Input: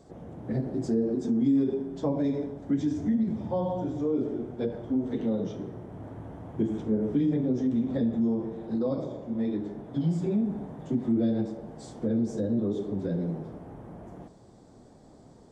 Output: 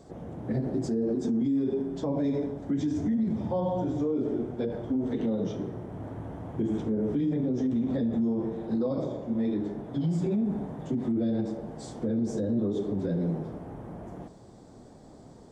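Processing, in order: peak limiter -24 dBFS, peak gain reduction 8 dB; trim +3 dB

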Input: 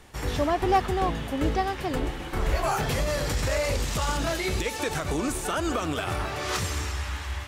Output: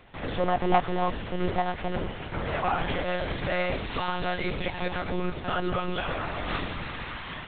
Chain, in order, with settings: high-pass 110 Hz 12 dB/octave; monotone LPC vocoder at 8 kHz 180 Hz

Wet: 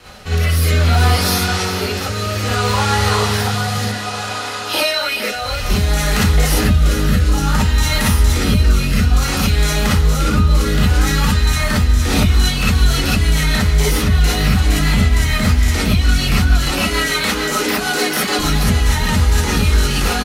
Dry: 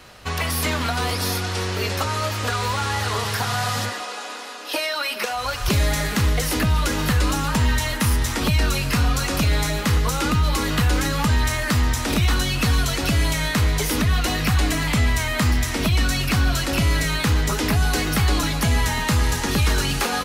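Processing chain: 16.65–18.39 s: high-pass 240 Hz 24 dB/octave; compression, threshold -22 dBFS, peak gain reduction 7.5 dB; rotary cabinet horn 0.6 Hz, later 6.7 Hz, at 11.76 s; on a send: feedback delay 424 ms, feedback 42%, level -13 dB; on the sum: gated-style reverb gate 80 ms rising, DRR -6.5 dB; trim +3.5 dB

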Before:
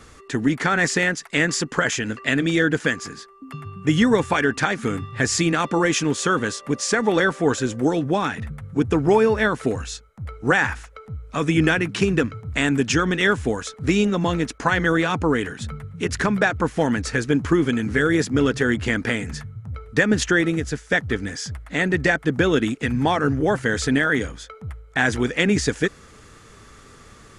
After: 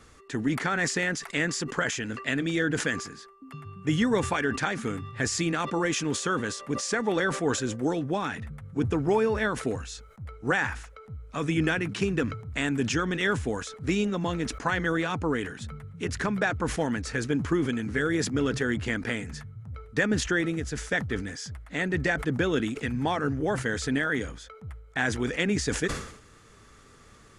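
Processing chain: decay stretcher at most 81 dB/s; trim -7.5 dB

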